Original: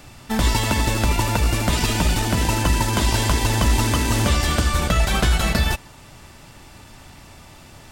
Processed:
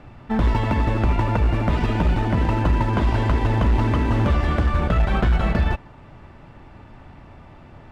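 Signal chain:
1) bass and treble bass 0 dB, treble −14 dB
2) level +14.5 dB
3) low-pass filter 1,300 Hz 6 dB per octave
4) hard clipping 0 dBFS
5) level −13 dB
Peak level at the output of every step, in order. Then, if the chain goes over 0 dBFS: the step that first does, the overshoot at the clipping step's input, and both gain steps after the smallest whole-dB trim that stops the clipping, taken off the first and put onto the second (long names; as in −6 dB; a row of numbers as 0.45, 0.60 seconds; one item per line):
−8.5, +6.0, +5.5, 0.0, −13.0 dBFS
step 2, 5.5 dB
step 2 +8.5 dB, step 5 −7 dB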